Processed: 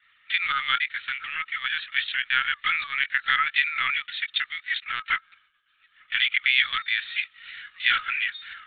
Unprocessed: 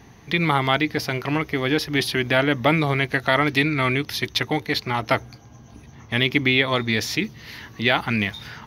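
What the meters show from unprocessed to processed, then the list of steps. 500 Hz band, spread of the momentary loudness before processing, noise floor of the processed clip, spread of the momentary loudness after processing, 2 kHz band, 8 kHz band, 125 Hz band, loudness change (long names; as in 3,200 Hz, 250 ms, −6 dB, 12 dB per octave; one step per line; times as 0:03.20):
below −35 dB, 7 LU, −64 dBFS, 8 LU, 0.0 dB, below −40 dB, below −30 dB, −3.0 dB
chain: Butterworth high-pass 1,200 Hz 96 dB per octave
downward expander −53 dBFS
linear-prediction vocoder at 8 kHz pitch kept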